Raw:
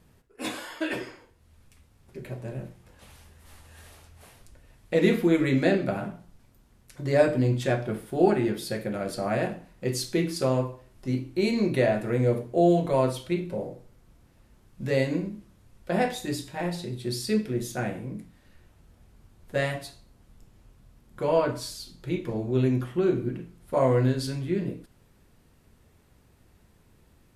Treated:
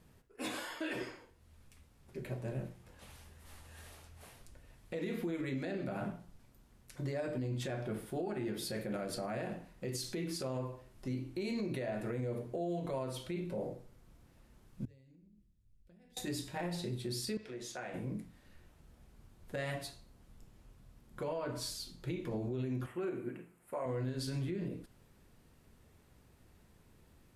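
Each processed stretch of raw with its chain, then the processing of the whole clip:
0:14.85–0:16.17: guitar amp tone stack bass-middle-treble 10-0-1 + downward compressor 12 to 1, threshold −55 dBFS
0:17.37–0:17.94: three-way crossover with the lows and the highs turned down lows −15 dB, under 430 Hz, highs −17 dB, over 7,800 Hz + downward compressor 3 to 1, threshold −37 dBFS
0:22.86–0:23.86: high-pass filter 580 Hz 6 dB per octave + flat-topped bell 4,500 Hz −11 dB 1.2 octaves
whole clip: mains-hum notches 50/100 Hz; downward compressor, threshold −27 dBFS; brickwall limiter −26 dBFS; level −3.5 dB

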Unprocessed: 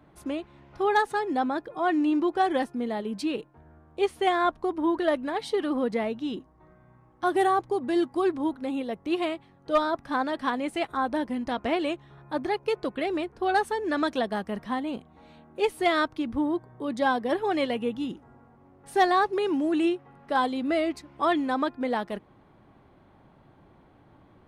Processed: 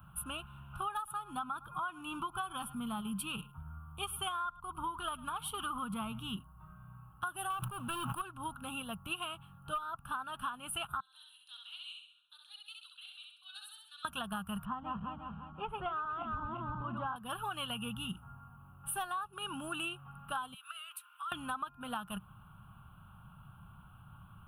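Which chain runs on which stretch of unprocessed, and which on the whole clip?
0:00.97–0:06.36: parametric band 2,000 Hz −5 dB 0.27 octaves + comb filter 0.9 ms, depth 45% + single-tap delay 106 ms −22 dB
0:07.50–0:08.22: high-pass filter 98 Hz 24 dB per octave + leveller curve on the samples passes 2 + level that may fall only so fast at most 71 dB per second
0:11.00–0:14.05: four-pole ladder band-pass 4,200 Hz, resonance 80% + repeating echo 66 ms, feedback 49%, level −3 dB
0:14.65–0:17.16: feedback delay that plays each chunk backwards 175 ms, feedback 57%, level −3 dB + low-pass filter 1,300 Hz
0:20.54–0:21.32: high-pass filter 1,300 Hz 24 dB per octave + downward compressor 12 to 1, threshold −43 dBFS
whole clip: drawn EQ curve 130 Hz 0 dB, 190 Hz −3 dB, 290 Hz −25 dB, 500 Hz −26 dB, 1,400 Hz +5 dB, 2,000 Hz −29 dB, 2,800 Hz +3 dB, 4,700 Hz −24 dB, 7,100 Hz −15 dB, 10,000 Hz +11 dB; downward compressor 16 to 1, threshold −40 dBFS; level +5.5 dB

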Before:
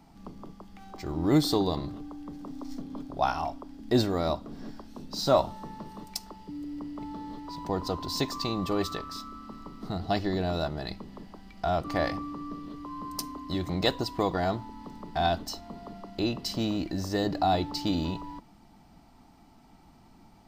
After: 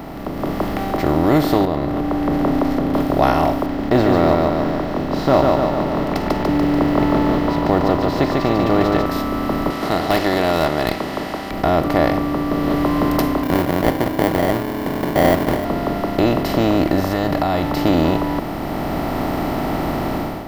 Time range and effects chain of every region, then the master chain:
0:01.65–0:02.94: low-pass filter 1,400 Hz 6 dB per octave + downward compressor 3 to 1, threshold −38 dBFS
0:03.66–0:09.06: floating-point word with a short mantissa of 4 bits + high-frequency loss of the air 160 metres + repeating echo 145 ms, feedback 39%, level −5.5 dB
0:09.70–0:11.51: meter weighting curve ITU-R 468 + tube saturation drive 21 dB, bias 0.4
0:13.43–0:15.65: high-pass filter 88 Hz 24 dB per octave + sample-rate reduction 1,300 Hz
0:17.00–0:17.77: downward compressor, threshold −28 dBFS + parametric band 380 Hz −13 dB 0.95 octaves
whole clip: compressor on every frequency bin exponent 0.4; flat-topped bell 5,800 Hz −10 dB; automatic gain control gain up to 11.5 dB; level −1 dB

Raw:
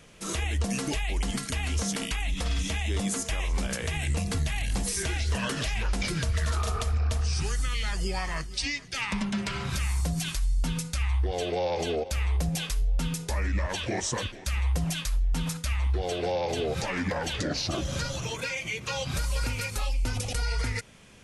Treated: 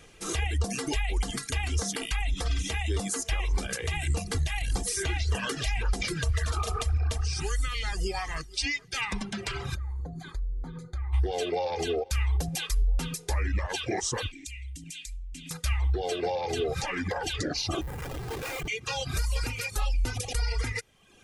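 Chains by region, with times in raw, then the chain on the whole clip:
0:09.74–0:11.12: moving average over 16 samples + downward compressor 3 to 1, threshold −32 dBFS + hum with harmonics 120 Hz, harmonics 4, −54 dBFS
0:14.31–0:15.51: drawn EQ curve 190 Hz 0 dB, 280 Hz +12 dB, 430 Hz −19 dB, 1,100 Hz −24 dB, 2,300 Hz +10 dB, 4,900 Hz +5 dB, 7,600 Hz +13 dB, 12,000 Hz +1 dB + downward compressor 10 to 1, threshold −37 dBFS
0:17.81–0:18.68: running median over 9 samples + comparator with hysteresis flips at −37.5 dBFS
whole clip: reverb reduction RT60 0.94 s; comb filter 2.5 ms, depth 44%

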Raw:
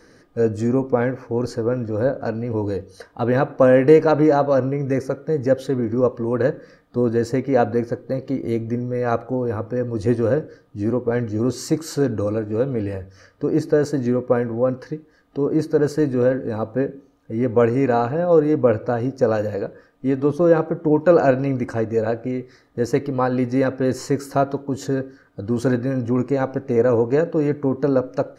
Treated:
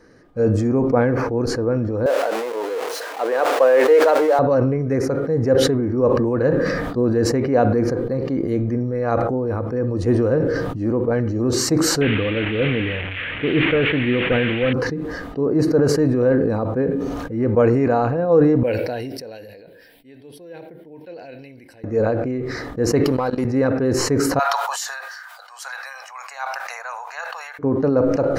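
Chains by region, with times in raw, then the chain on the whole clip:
0:02.06–0:04.39: converter with a step at zero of −24.5 dBFS + high-pass filter 440 Hz 24 dB per octave
0:12.01–0:14.73: linear delta modulator 16 kbit/s, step −28 dBFS + high shelf with overshoot 1,500 Hz +12.5 dB, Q 1.5
0:18.63–0:21.84: first-order pre-emphasis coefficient 0.97 + phaser with its sweep stopped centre 2,900 Hz, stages 4
0:23.04–0:23.45: bass and treble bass −5 dB, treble +15 dB + output level in coarse steps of 23 dB + leveller curve on the samples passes 1
0:24.39–0:27.59: Butterworth high-pass 740 Hz 48 dB per octave + spectral tilt +3.5 dB per octave
whole clip: high-shelf EQ 3,000 Hz −7.5 dB; level that may fall only so fast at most 26 dB per second

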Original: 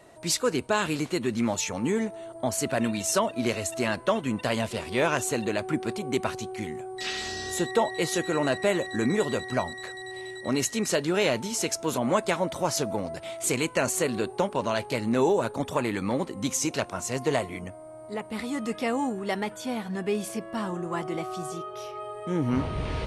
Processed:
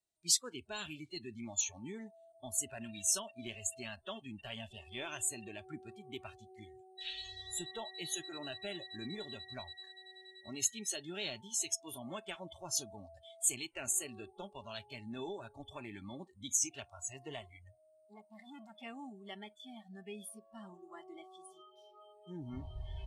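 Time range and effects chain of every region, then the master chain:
0:18.05–0:18.83: low shelf with overshoot 110 Hz −13.5 dB, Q 1.5 + saturating transformer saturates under 1,100 Hz
whole clip: noise reduction from a noise print of the clip's start 27 dB; octave-band graphic EQ 125/250/500/1,000/2,000/4,000/8,000 Hz −8/−7/−11/−9/−9/+6/+7 dB; level −8 dB

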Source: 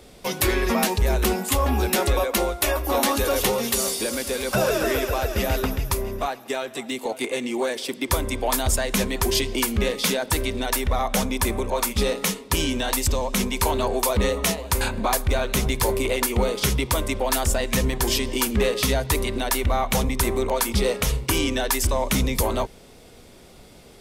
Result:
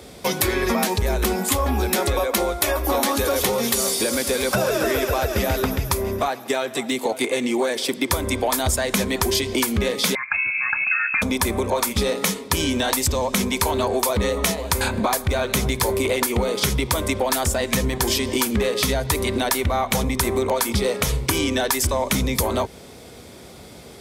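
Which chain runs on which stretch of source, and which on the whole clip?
0:10.15–0:11.22: phaser with its sweep stopped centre 430 Hz, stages 8 + voice inversion scrambler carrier 2,600 Hz
whole clip: high-pass filter 57 Hz 24 dB per octave; notch filter 2,800 Hz, Q 15; downward compressor, threshold −24 dBFS; level +6.5 dB

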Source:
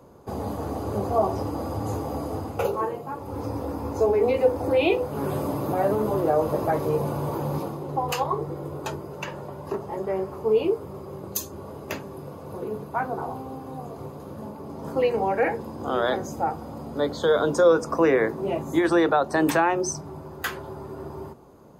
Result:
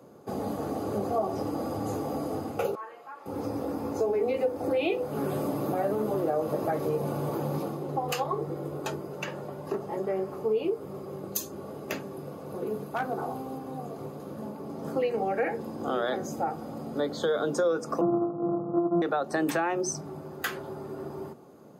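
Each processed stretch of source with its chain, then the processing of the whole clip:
0:02.75–0:03.26: spectral tilt +2.5 dB per octave + downward compressor 2 to 1, threshold −35 dBFS + resonant band-pass 1,500 Hz, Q 1.1
0:12.66–0:13.59: high-shelf EQ 4,900 Hz +4 dB + gain into a clipping stage and back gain 19.5 dB
0:18.01–0:19.02: samples sorted by size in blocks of 128 samples + Butterworth low-pass 1,300 Hz 96 dB per octave + comb filter 6.2 ms, depth 66%
whole clip: Chebyshev high-pass filter 170 Hz, order 2; notch filter 970 Hz, Q 6.3; downward compressor 2.5 to 1, threshold −26 dBFS

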